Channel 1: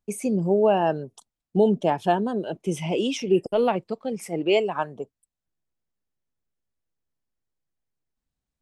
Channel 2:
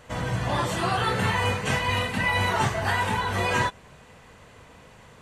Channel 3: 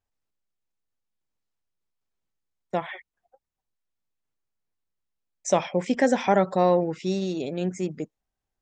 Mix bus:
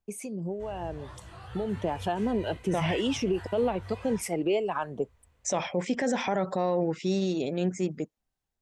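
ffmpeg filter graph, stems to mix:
ffmpeg -i stem1.wav -i stem2.wav -i stem3.wav -filter_complex "[0:a]acompressor=threshold=-26dB:ratio=10,acrossover=split=680[link_01][link_02];[link_01]aeval=exprs='val(0)*(1-0.5/2+0.5/2*cos(2*PI*2.2*n/s))':channel_layout=same[link_03];[link_02]aeval=exprs='val(0)*(1-0.5/2-0.5/2*cos(2*PI*2.2*n/s))':channel_layout=same[link_04];[link_03][link_04]amix=inputs=2:normalize=0,dynaudnorm=framelen=300:gausssize=11:maxgain=9dB,volume=-3.5dB[link_05];[1:a]lowshelf=frequency=110:width_type=q:width=1.5:gain=13.5,flanger=delay=15.5:depth=7.9:speed=2.8,adelay=500,volume=-20dB[link_06];[2:a]dynaudnorm=framelen=570:gausssize=5:maxgain=5dB,volume=-4dB[link_07];[link_05][link_06][link_07]amix=inputs=3:normalize=0,alimiter=limit=-18.5dB:level=0:latency=1:release=32" out.wav

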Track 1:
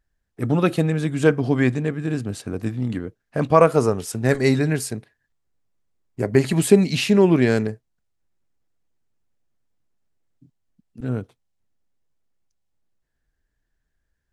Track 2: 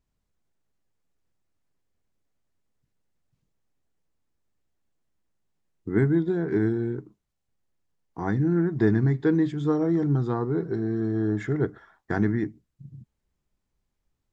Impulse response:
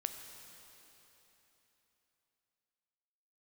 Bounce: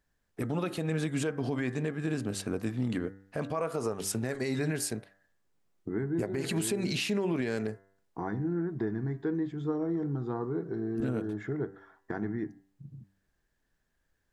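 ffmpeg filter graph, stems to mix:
-filter_complex "[0:a]alimiter=limit=-12.5dB:level=0:latency=1:release=167,volume=2dB[link_01];[1:a]highshelf=frequency=2300:gain=-10.5,acompressor=threshold=-34dB:ratio=2,volume=2dB[link_02];[link_01][link_02]amix=inputs=2:normalize=0,lowshelf=frequency=160:gain=-8.5,bandreject=frequency=97.25:width_type=h:width=4,bandreject=frequency=194.5:width_type=h:width=4,bandreject=frequency=291.75:width_type=h:width=4,bandreject=frequency=389:width_type=h:width=4,bandreject=frequency=486.25:width_type=h:width=4,bandreject=frequency=583.5:width_type=h:width=4,bandreject=frequency=680.75:width_type=h:width=4,bandreject=frequency=778:width_type=h:width=4,bandreject=frequency=875.25:width_type=h:width=4,bandreject=frequency=972.5:width_type=h:width=4,bandreject=frequency=1069.75:width_type=h:width=4,bandreject=frequency=1167:width_type=h:width=4,bandreject=frequency=1264.25:width_type=h:width=4,bandreject=frequency=1361.5:width_type=h:width=4,bandreject=frequency=1458.75:width_type=h:width=4,bandreject=frequency=1556:width_type=h:width=4,bandreject=frequency=1653.25:width_type=h:width=4,bandreject=frequency=1750.5:width_type=h:width=4,bandreject=frequency=1847.75:width_type=h:width=4,bandreject=frequency=1945:width_type=h:width=4,bandreject=frequency=2042.25:width_type=h:width=4,alimiter=limit=-21.5dB:level=0:latency=1:release=262"

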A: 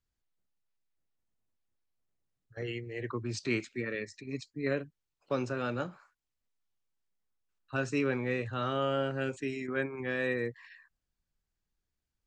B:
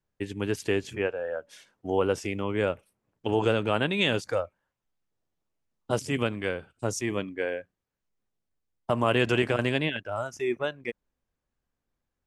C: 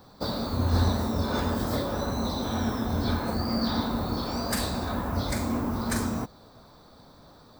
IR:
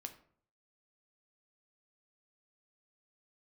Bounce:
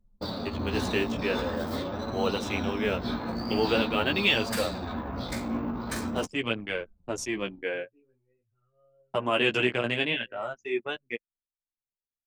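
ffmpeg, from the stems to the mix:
-filter_complex "[0:a]volume=-17dB[link_01];[1:a]highpass=150,adelay=250,volume=0.5dB[link_02];[2:a]lowshelf=frequency=150:gain=10.5,acrossover=split=170|3000[link_03][link_04][link_05];[link_03]acompressor=threshold=-46dB:ratio=2[link_06];[link_06][link_04][link_05]amix=inputs=3:normalize=0,volume=-1.5dB[link_07];[link_01][link_02][link_07]amix=inputs=3:normalize=0,anlmdn=3.98,equalizer=frequency=2800:width_type=o:width=0.97:gain=7,flanger=delay=8.9:depth=8.5:regen=-8:speed=0.45:shape=sinusoidal"

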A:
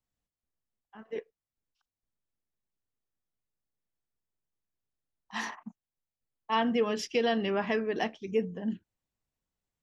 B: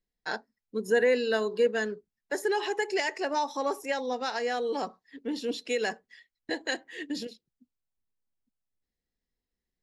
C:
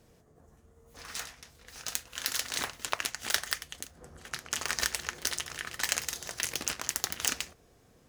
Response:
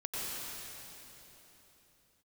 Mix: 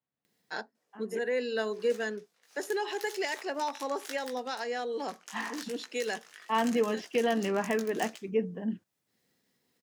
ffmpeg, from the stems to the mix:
-filter_complex "[0:a]lowpass=2800,volume=0dB,asplit=2[link_01][link_02];[1:a]acompressor=mode=upward:threshold=-49dB:ratio=2.5,adelay=250,volume=-4dB[link_03];[2:a]highpass=430,flanger=delay=16:depth=3.7:speed=0.79,adelay=750,volume=-11dB[link_04];[link_02]apad=whole_len=444097[link_05];[link_03][link_05]sidechaincompress=threshold=-35dB:ratio=8:attack=9.5:release=676[link_06];[link_01][link_06][link_04]amix=inputs=3:normalize=0,highpass=frequency=120:width=0.5412,highpass=frequency=120:width=1.3066"

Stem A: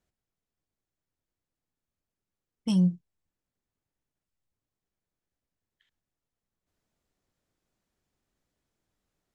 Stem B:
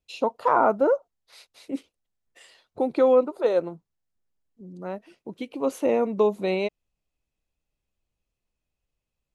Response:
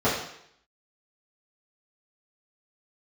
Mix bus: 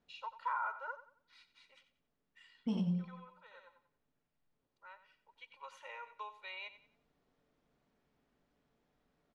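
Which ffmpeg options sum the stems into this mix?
-filter_complex "[0:a]alimiter=level_in=3dB:limit=-24dB:level=0:latency=1:release=372,volume=-3dB,volume=1.5dB,asplit=4[link_01][link_02][link_03][link_04];[link_02]volume=-18dB[link_05];[link_03]volume=-4dB[link_06];[1:a]highpass=frequency=1100:width=0.5412,highpass=frequency=1100:width=1.3066,aecho=1:1:2.1:0.87,volume=-11.5dB,asplit=2[link_07][link_08];[link_08]volume=-13.5dB[link_09];[link_04]apad=whole_len=412178[link_10];[link_07][link_10]sidechaincompress=threshold=-52dB:ratio=5:attack=16:release=849[link_11];[2:a]atrim=start_sample=2205[link_12];[link_05][link_12]afir=irnorm=-1:irlink=0[link_13];[link_06][link_09]amix=inputs=2:normalize=0,aecho=0:1:91|182|273|364|455:1|0.32|0.102|0.0328|0.0105[link_14];[link_01][link_11][link_13][link_14]amix=inputs=4:normalize=0,lowpass=3400,equalizer=frequency=75:width_type=o:width=0.79:gain=-8.5,alimiter=level_in=3.5dB:limit=-24dB:level=0:latency=1:release=101,volume=-3.5dB"

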